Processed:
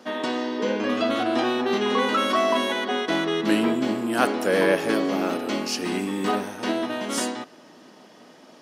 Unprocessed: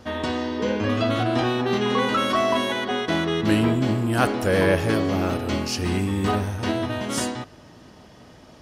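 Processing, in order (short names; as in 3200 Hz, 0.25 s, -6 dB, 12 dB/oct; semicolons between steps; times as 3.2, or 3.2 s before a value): HPF 210 Hz 24 dB/oct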